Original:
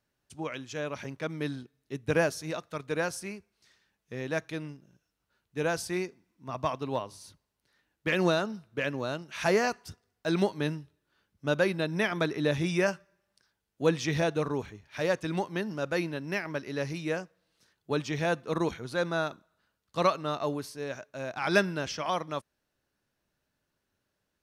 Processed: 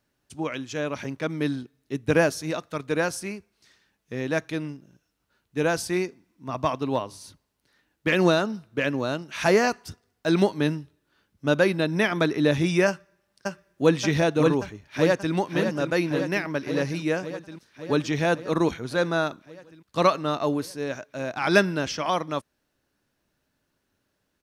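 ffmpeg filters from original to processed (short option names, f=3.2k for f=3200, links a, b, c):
-filter_complex "[0:a]asplit=2[a][b];[b]afade=t=in:st=12.87:d=0.01,afade=t=out:st=13.96:d=0.01,aecho=0:1:580|1160|1740|2320|2900|3480|4060|4640|5220|5800|6380:0.749894|0.487431|0.31683|0.20594|0.133861|0.0870095|0.0565562|0.0367615|0.023895|0.0155317|0.0100956[c];[a][c]amix=inputs=2:normalize=0,asplit=2[d][e];[e]afade=t=in:st=14.82:d=0.01,afade=t=out:st=15.34:d=0.01,aecho=0:1:560|1120|1680|2240|2800|3360|3920|4480|5040|5600|6160|6720:0.421697|0.316272|0.237204|0.177903|0.133427|0.100071|0.0750529|0.0562897|0.0422173|0.0316629|0.0237472|0.0178104[f];[d][f]amix=inputs=2:normalize=0,equalizer=f=280:t=o:w=0.54:g=4,volume=5dB"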